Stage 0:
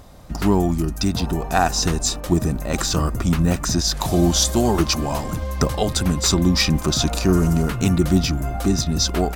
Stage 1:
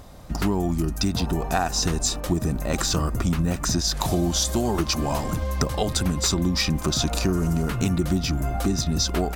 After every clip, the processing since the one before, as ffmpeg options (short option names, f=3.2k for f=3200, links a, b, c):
-af "acompressor=threshold=-19dB:ratio=6"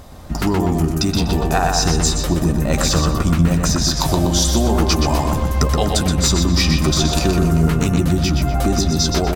-filter_complex "[0:a]asplit=2[a][b];[b]adelay=13,volume=-11dB[c];[a][c]amix=inputs=2:normalize=0,asplit=2[d][e];[e]adelay=123,lowpass=f=4.6k:p=1,volume=-3dB,asplit=2[f][g];[g]adelay=123,lowpass=f=4.6k:p=1,volume=0.44,asplit=2[h][i];[i]adelay=123,lowpass=f=4.6k:p=1,volume=0.44,asplit=2[j][k];[k]adelay=123,lowpass=f=4.6k:p=1,volume=0.44,asplit=2[l][m];[m]adelay=123,lowpass=f=4.6k:p=1,volume=0.44,asplit=2[n][o];[o]adelay=123,lowpass=f=4.6k:p=1,volume=0.44[p];[d][f][h][j][l][n][p]amix=inputs=7:normalize=0,volume=4.5dB"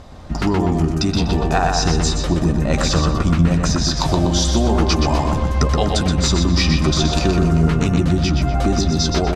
-af "lowpass=5.7k"